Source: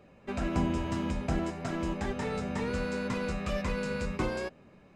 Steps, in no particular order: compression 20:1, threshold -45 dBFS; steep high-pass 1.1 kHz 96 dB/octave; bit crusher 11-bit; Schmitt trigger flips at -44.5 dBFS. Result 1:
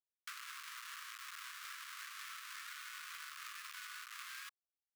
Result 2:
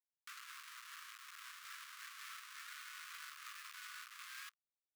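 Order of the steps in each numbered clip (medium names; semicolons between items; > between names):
bit crusher > Schmitt trigger > steep high-pass > compression; Schmitt trigger > compression > bit crusher > steep high-pass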